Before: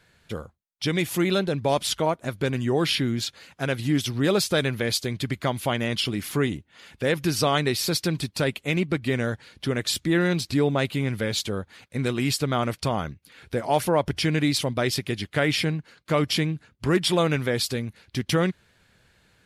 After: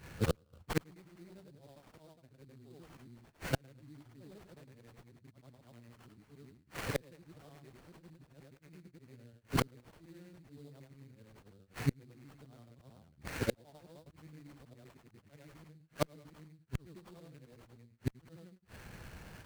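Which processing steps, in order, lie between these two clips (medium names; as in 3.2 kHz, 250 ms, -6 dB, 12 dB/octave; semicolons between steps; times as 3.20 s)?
short-time spectra conjugated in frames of 221 ms; dynamic bell 1.2 kHz, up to -8 dB, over -44 dBFS, Q 0.99; sample-rate reducer 4.3 kHz, jitter 20%; bass shelf 220 Hz +7 dB; inverted gate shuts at -28 dBFS, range -41 dB; sliding maximum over 3 samples; trim +10.5 dB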